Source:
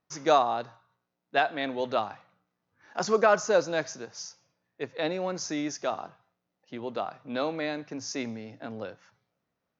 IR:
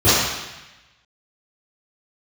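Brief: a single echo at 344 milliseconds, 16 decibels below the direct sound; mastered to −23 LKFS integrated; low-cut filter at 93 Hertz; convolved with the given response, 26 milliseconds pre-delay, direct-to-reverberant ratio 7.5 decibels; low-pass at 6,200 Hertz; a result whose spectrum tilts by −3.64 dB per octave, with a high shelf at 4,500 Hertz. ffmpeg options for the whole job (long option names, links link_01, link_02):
-filter_complex "[0:a]highpass=93,lowpass=6200,highshelf=frequency=4500:gain=4.5,aecho=1:1:344:0.158,asplit=2[link_01][link_02];[1:a]atrim=start_sample=2205,adelay=26[link_03];[link_02][link_03]afir=irnorm=-1:irlink=0,volume=-32.5dB[link_04];[link_01][link_04]amix=inputs=2:normalize=0,volume=5.5dB"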